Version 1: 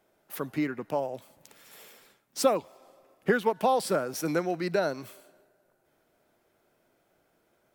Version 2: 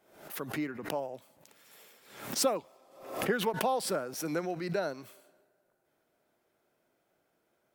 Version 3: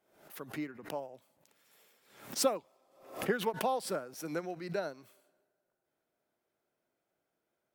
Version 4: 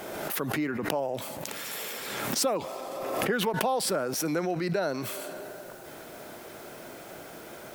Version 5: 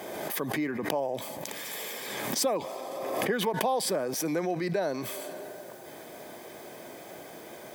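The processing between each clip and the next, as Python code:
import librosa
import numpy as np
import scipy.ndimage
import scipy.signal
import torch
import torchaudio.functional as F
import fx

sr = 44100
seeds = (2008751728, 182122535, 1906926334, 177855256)

y1 = fx.low_shelf(x, sr, hz=64.0, db=-10.0)
y1 = fx.pre_swell(y1, sr, db_per_s=88.0)
y1 = y1 * 10.0 ** (-5.5 / 20.0)
y2 = fx.upward_expand(y1, sr, threshold_db=-41.0, expansion=1.5)
y3 = fx.env_flatten(y2, sr, amount_pct=70)
y4 = fx.notch_comb(y3, sr, f0_hz=1400.0)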